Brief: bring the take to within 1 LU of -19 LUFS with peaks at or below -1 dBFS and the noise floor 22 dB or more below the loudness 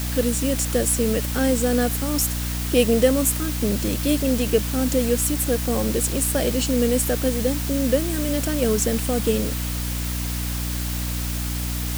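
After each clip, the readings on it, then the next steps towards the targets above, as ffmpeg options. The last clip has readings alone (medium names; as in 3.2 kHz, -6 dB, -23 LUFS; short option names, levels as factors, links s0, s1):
hum 60 Hz; highest harmonic 300 Hz; hum level -24 dBFS; noise floor -26 dBFS; noise floor target -44 dBFS; loudness -22.0 LUFS; peak level -4.0 dBFS; loudness target -19.0 LUFS
-> -af "bandreject=f=60:t=h:w=4,bandreject=f=120:t=h:w=4,bandreject=f=180:t=h:w=4,bandreject=f=240:t=h:w=4,bandreject=f=300:t=h:w=4"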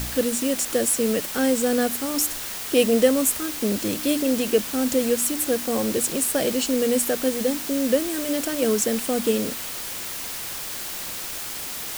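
hum not found; noise floor -32 dBFS; noise floor target -45 dBFS
-> -af "afftdn=nr=13:nf=-32"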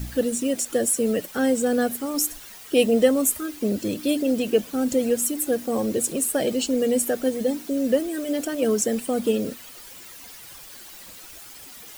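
noise floor -43 dBFS; noise floor target -46 dBFS
-> -af "afftdn=nr=6:nf=-43"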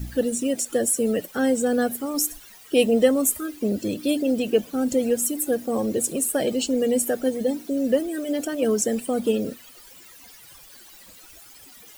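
noise floor -48 dBFS; loudness -23.5 LUFS; peak level -6.0 dBFS; loudness target -19.0 LUFS
-> -af "volume=1.68"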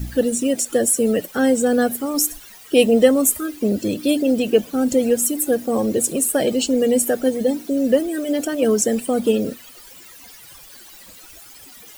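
loudness -19.0 LUFS; peak level -1.5 dBFS; noise floor -43 dBFS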